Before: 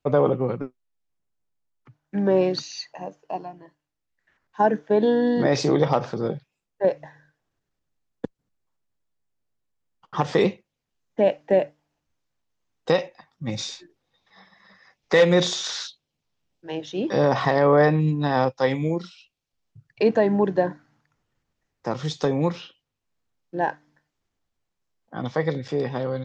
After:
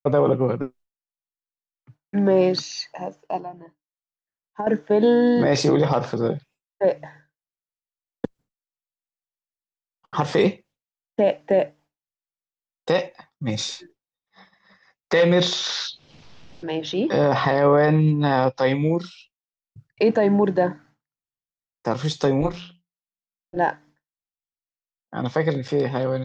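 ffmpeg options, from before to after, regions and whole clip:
-filter_complex "[0:a]asettb=1/sr,asplit=3[s0][s1][s2];[s0]atrim=end=3.404[s3];[s1]atrim=start=3.4:end=4.67,asetpts=PTS-STARTPTS,afade=t=in:d=0.004:c=qsin,afade=t=out:st=1.266:d=0.004:c=qsin,bandreject=f=60:t=h:w=6,bandreject=f=120:t=h:w=6,bandreject=f=180:t=h:w=6,bandreject=f=240:t=h:w=6,bandreject=f=300:t=h:w=6,acompressor=threshold=0.0562:ratio=12:attack=3.2:release=140:knee=1:detection=peak,highshelf=f=2200:g=-11[s4];[s2]atrim=start=4.666[s5];[s3][s4]acrossfade=d=0.004:c1=hsin:c2=qsin[s6];[s6][s5]acrossfade=d=0.004:c1=qsin:c2=hsin,asettb=1/sr,asplit=3[s7][s8][s9];[s7]atrim=end=15.134[s10];[s8]atrim=start=15.13:end=18.95,asetpts=PTS-STARTPTS,afade=t=in:d=0.004:c=qsin,afade=t=out:st=3.816:d=0.004:c=qsin,lowpass=f=5500:w=0.5412,lowpass=f=5500:w=1.3066,acompressor=mode=upward:threshold=0.0562:ratio=2.5:attack=3.2:release=140:knee=2.83:detection=peak[s11];[s9]atrim=start=18.946[s12];[s10][s11]acrossfade=d=0.004:c1=hsin:c2=qsin[s13];[s13][s12]acrossfade=d=0.004:c1=qsin:c2=hsin,asettb=1/sr,asplit=3[s14][s15][s16];[s14]atrim=end=22.414[s17];[s15]atrim=start=22.41:end=23.57,asetpts=PTS-STARTPTS,afade=t=in:d=0.004:c=qsin,afade=t=out:st=1.156:d=0.004:c=qsin,tremolo=f=200:d=0.857,bandreject=f=87.26:t=h:w=4,bandreject=f=174.52:t=h:w=4[s18];[s16]atrim=start=23.566[s19];[s17][s18]acrossfade=d=0.004:c1=hsin:c2=qsin[s20];[s20][s19]acrossfade=d=0.004:c1=qsin:c2=hsin,alimiter=limit=0.237:level=0:latency=1:release=15,agate=range=0.0224:threshold=0.00398:ratio=3:detection=peak,volume=1.5"

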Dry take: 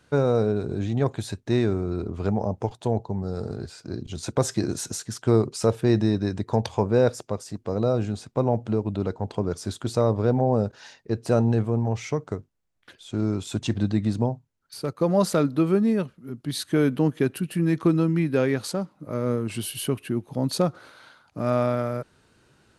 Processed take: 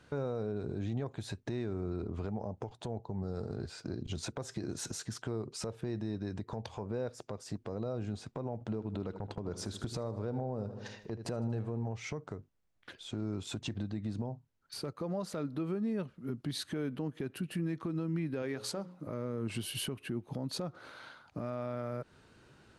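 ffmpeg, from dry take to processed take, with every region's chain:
-filter_complex "[0:a]asettb=1/sr,asplit=3[s0][s1][s2];[s0]atrim=end=8.604[s3];[s1]atrim=start=8.6:end=11.85,asetpts=PTS-STARTPTS,afade=t=in:d=0.004:c=qsin,afade=t=out:st=3.246:d=0.004:c=qsin,agate=range=0.0355:threshold=0.00794:ratio=16:release=100:detection=peak,acompressor=mode=upward:threshold=0.0708:ratio=2.5:attack=3.2:release=140:knee=2.83:detection=peak,aecho=1:1:78|156|234|312|390:0.178|0.0942|0.05|0.0265|0.014,atrim=end_sample=143325[s4];[s2]atrim=start=11.846[s5];[s3][s4]acrossfade=d=0.004:c1=hsin:c2=qsin[s6];[s6][s5]acrossfade=d=0.004:c1=qsin:c2=hsin,asettb=1/sr,asplit=3[s7][s8][s9];[s7]atrim=end=18.424[s10];[s8]atrim=start=18.42:end=19.07,asetpts=PTS-STARTPTS,afade=t=in:d=0.004:c=qsin,afade=t=out:st=0.646:d=0.004:c=qsin,bass=f=250:g=-5,treble=f=4000:g=3,bandreject=f=60:t=h:w=6,bandreject=f=120:t=h:w=6,bandreject=f=180:t=h:w=6,bandreject=f=240:t=h:w=6,bandreject=f=300:t=h:w=6,bandreject=f=360:t=h:w=6,bandreject=f=420:t=h:w=6,bandreject=f=480:t=h:w=6,bandreject=f=540:t=h:w=6[s11];[s9]atrim=start=19.066[s12];[s10][s11]acrossfade=d=0.004:c1=hsin:c2=qsin[s13];[s13][s12]acrossfade=d=0.004:c1=qsin:c2=hsin,highshelf=f=7700:g=-10,acompressor=threshold=0.0282:ratio=3,alimiter=level_in=1.41:limit=0.0631:level=0:latency=1:release=155,volume=0.708"

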